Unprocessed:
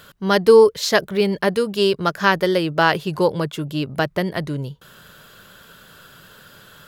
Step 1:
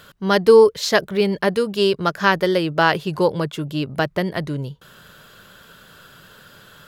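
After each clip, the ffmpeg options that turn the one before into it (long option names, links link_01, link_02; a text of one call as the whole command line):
ffmpeg -i in.wav -af "highshelf=frequency=9400:gain=-4" out.wav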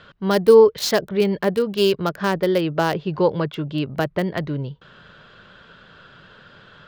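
ffmpeg -i in.wav -filter_complex "[0:a]acrossover=split=750|4500[link_01][link_02][link_03];[link_02]alimiter=limit=-16dB:level=0:latency=1:release=432[link_04];[link_03]acrusher=bits=4:mix=0:aa=0.000001[link_05];[link_01][link_04][link_05]amix=inputs=3:normalize=0" out.wav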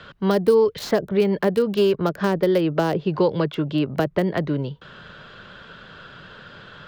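ffmpeg -i in.wav -filter_complex "[0:a]acrossover=split=170|640|1900[link_01][link_02][link_03][link_04];[link_01]acompressor=threshold=-39dB:ratio=4[link_05];[link_02]acompressor=threshold=-22dB:ratio=4[link_06];[link_03]acompressor=threshold=-34dB:ratio=4[link_07];[link_04]acompressor=threshold=-41dB:ratio=4[link_08];[link_05][link_06][link_07][link_08]amix=inputs=4:normalize=0,volume=4.5dB" out.wav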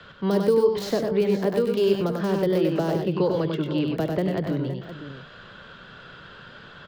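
ffmpeg -i in.wav -filter_complex "[0:a]acrossover=split=170|730|3800[link_01][link_02][link_03][link_04];[link_03]alimiter=level_in=2dB:limit=-24dB:level=0:latency=1,volume=-2dB[link_05];[link_01][link_02][link_05][link_04]amix=inputs=4:normalize=0,aecho=1:1:70|97|121|458|517:0.141|0.596|0.251|0.112|0.251,volume=-3.5dB" out.wav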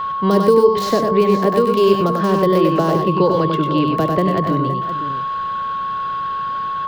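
ffmpeg -i in.wav -af "aeval=exprs='val(0)+0.0447*sin(2*PI*1100*n/s)':channel_layout=same,volume=7dB" out.wav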